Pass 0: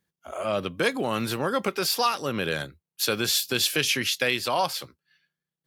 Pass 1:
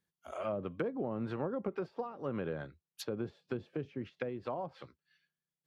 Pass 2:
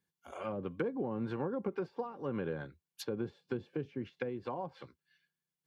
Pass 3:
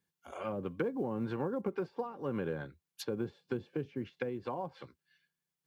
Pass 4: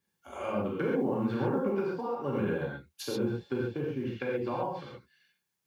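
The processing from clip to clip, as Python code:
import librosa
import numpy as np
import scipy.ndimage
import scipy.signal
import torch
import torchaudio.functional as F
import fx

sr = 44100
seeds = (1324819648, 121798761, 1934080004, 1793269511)

y1 = fx.env_lowpass_down(x, sr, base_hz=490.0, full_db=-21.5)
y1 = y1 * 10.0 ** (-7.5 / 20.0)
y2 = fx.notch_comb(y1, sr, f0_hz=640.0)
y2 = y2 * 10.0 ** (1.0 / 20.0)
y3 = fx.quant_float(y2, sr, bits=6)
y3 = y3 * 10.0 ** (1.0 / 20.0)
y4 = fx.rev_gated(y3, sr, seeds[0], gate_ms=160, shape='flat', drr_db=-5.0)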